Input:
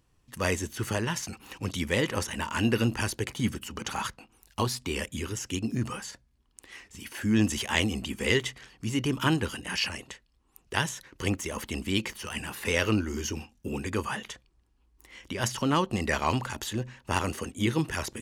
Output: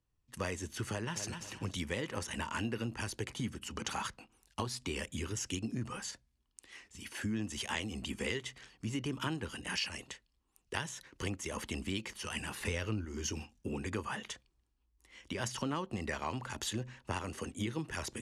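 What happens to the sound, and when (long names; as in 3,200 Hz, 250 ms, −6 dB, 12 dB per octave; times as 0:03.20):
0:00.90–0:01.33: delay throw 250 ms, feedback 30%, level −11 dB
0:12.60–0:13.05: low-shelf EQ 130 Hz +10.5 dB
whole clip: low-pass filter 11,000 Hz 24 dB per octave; downward compressor 8 to 1, threshold −32 dBFS; multiband upward and downward expander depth 40%; level −1.5 dB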